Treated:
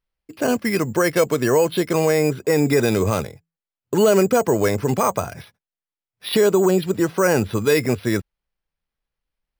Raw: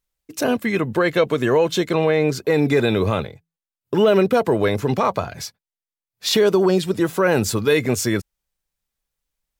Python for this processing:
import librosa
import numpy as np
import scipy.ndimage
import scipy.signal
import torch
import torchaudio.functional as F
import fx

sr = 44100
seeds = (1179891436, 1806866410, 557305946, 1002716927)

y = np.repeat(scipy.signal.resample_poly(x, 1, 6), 6)[:len(x)]